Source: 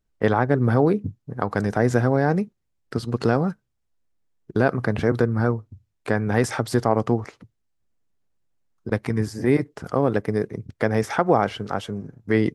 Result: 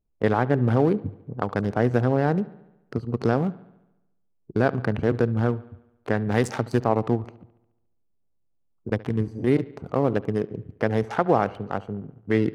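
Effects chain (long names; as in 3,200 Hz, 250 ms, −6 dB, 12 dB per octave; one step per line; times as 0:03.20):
adaptive Wiener filter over 25 samples
0:06.31–0:06.84: high-shelf EQ 3,300 Hz +7.5 dB
bucket-brigade delay 71 ms, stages 2,048, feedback 59%, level −20 dB
level −1.5 dB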